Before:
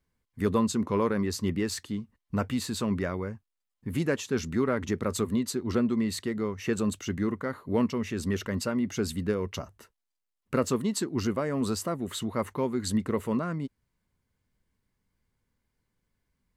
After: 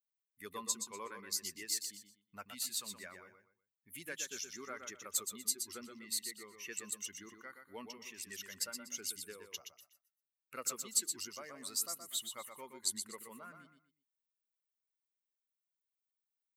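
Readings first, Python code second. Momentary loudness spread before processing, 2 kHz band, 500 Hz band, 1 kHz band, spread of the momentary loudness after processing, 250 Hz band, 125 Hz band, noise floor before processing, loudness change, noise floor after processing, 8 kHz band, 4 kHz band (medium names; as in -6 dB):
7 LU, -10.5 dB, -22.0 dB, -14.5 dB, 15 LU, -27.0 dB, -32.5 dB, -84 dBFS, -10.0 dB, under -85 dBFS, +2.0 dB, -3.0 dB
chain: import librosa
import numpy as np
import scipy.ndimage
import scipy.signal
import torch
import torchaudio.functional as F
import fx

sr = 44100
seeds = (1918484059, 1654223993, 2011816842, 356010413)

y = fx.bin_expand(x, sr, power=1.5)
y = np.diff(y, prepend=0.0)
y = fx.echo_feedback(y, sr, ms=122, feedback_pct=27, wet_db=-7)
y = y * librosa.db_to_amplitude(4.0)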